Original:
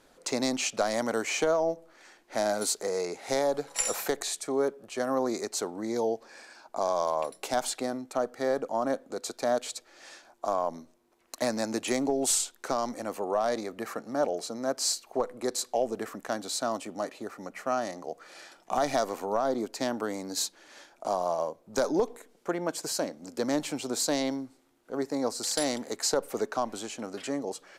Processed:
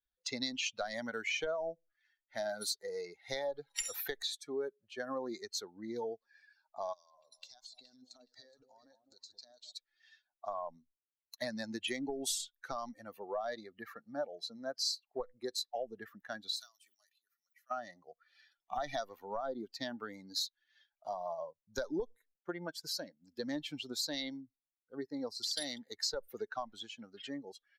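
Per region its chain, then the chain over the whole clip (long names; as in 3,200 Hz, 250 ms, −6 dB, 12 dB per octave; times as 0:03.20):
0:06.93–0:09.72: flat-topped bell 5,600 Hz +11.5 dB 1.3 octaves + downward compressor 12 to 1, threshold −38 dBFS + delay that swaps between a low-pass and a high-pass 210 ms, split 960 Hz, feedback 60%, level −4.5 dB
0:16.56–0:17.71: first difference + level that may fall only so fast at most 100 dB per second
whole clip: spectral dynamics exaggerated over time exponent 2; octave-band graphic EQ 125/250/500/1,000/4,000/8,000 Hz −7/−7/−4/−8/+7/−10 dB; downward compressor 2.5 to 1, threshold −42 dBFS; level +6 dB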